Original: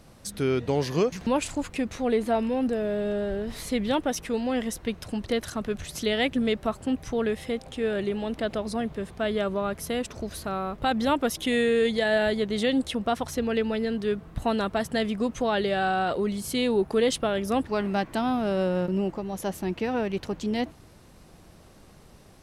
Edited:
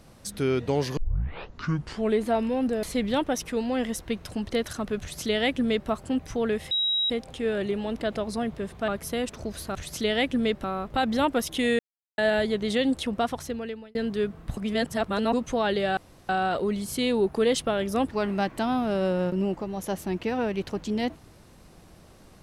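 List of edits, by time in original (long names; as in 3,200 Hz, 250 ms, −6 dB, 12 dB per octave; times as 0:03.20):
0:00.97: tape start 1.22 s
0:02.83–0:03.60: remove
0:05.77–0:06.66: duplicate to 0:10.52
0:07.48: insert tone 3,840 Hz −22 dBFS 0.39 s
0:09.26–0:09.65: remove
0:11.67–0:12.06: silence
0:13.10–0:13.83: fade out
0:14.45–0:15.21: reverse
0:15.85: splice in room tone 0.32 s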